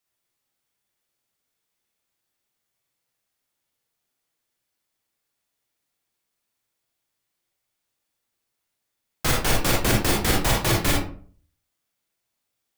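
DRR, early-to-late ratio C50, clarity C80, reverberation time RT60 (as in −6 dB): −1.5 dB, 2.5 dB, 8.0 dB, 0.45 s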